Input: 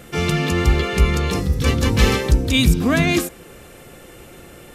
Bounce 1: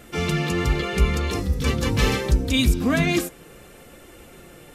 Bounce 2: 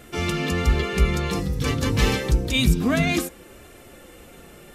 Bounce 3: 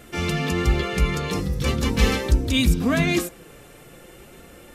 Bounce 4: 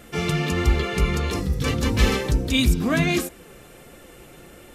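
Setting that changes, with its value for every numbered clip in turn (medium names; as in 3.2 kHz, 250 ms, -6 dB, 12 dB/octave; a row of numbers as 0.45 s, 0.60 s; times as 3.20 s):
flange, rate: 0.74 Hz, 0.27 Hz, 0.41 Hz, 1.5 Hz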